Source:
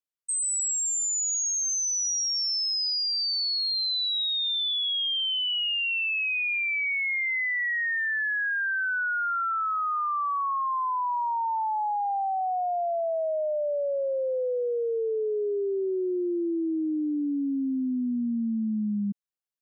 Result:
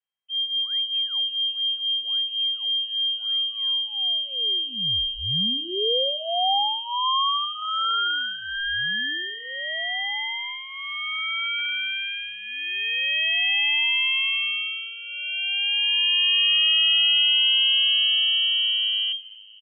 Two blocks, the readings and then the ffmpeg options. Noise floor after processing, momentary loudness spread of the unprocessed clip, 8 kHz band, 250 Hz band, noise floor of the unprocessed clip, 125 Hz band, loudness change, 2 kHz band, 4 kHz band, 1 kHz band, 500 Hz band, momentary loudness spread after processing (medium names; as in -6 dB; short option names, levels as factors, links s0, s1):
-37 dBFS, 4 LU, under -40 dB, -15.0 dB, -28 dBFS, no reading, +5.0 dB, +2.5 dB, +10.5 dB, -2.0 dB, -8.0 dB, 12 LU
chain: -filter_complex "[0:a]highpass=89,aecho=1:1:3.3:0.8,acrossover=split=180|660|1800[s0][s1][s2][s3];[s2]acompressor=threshold=0.01:ratio=6[s4];[s0][s1][s4][s3]amix=inputs=4:normalize=0,aeval=exprs='max(val(0),0)':c=same,asplit=5[s5][s6][s7][s8][s9];[s6]adelay=233,afreqshift=-110,volume=0.0891[s10];[s7]adelay=466,afreqshift=-220,volume=0.0507[s11];[s8]adelay=699,afreqshift=-330,volume=0.0288[s12];[s9]adelay=932,afreqshift=-440,volume=0.0166[s13];[s5][s10][s11][s12][s13]amix=inputs=5:normalize=0,lowpass=f=2700:t=q:w=0.5098,lowpass=f=2700:t=q:w=0.6013,lowpass=f=2700:t=q:w=0.9,lowpass=f=2700:t=q:w=2.563,afreqshift=-3200,volume=2.11"